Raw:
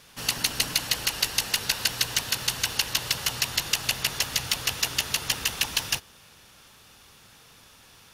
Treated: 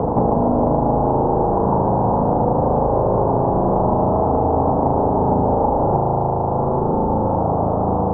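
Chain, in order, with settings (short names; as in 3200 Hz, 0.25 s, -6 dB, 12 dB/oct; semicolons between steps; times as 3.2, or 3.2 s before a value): reverse echo 0.208 s -18 dB; sine folder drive 19 dB, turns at -4 dBFS; AGC gain up to 11.5 dB; steep low-pass 890 Hz 48 dB/oct; low shelf 180 Hz -8.5 dB; spring tank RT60 3.5 s, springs 37 ms, chirp 50 ms, DRR -2.5 dB; three-band squash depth 100%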